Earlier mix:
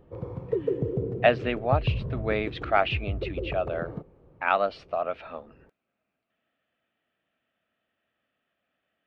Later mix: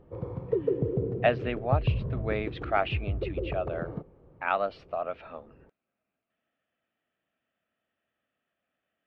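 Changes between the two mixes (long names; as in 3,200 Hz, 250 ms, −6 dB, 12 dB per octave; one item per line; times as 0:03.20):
speech −3.5 dB
master: add high-shelf EQ 5,900 Hz −10.5 dB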